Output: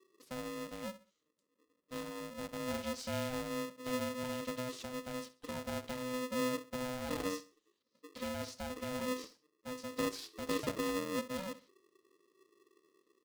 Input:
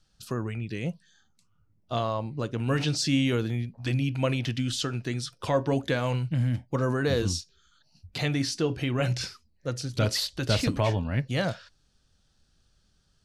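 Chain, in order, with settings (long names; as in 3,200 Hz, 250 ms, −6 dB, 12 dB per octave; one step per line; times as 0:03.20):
guitar amp tone stack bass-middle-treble 10-0-1
repeating echo 66 ms, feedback 30%, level −16.5 dB
ring modulator with a square carrier 380 Hz
level +3 dB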